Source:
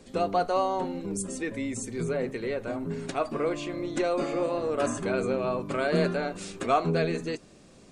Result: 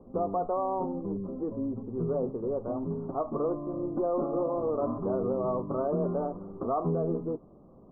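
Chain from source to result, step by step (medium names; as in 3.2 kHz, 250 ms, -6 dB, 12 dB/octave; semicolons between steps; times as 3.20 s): steep low-pass 1.2 kHz 72 dB/octave; peak limiter -20.5 dBFS, peak gain reduction 7 dB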